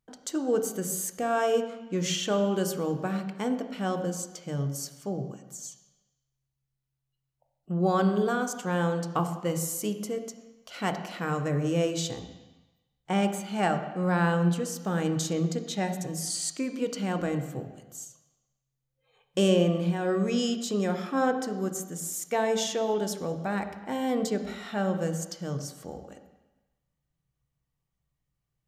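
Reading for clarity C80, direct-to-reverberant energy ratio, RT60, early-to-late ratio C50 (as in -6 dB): 10.5 dB, 7.0 dB, 1.1 s, 9.0 dB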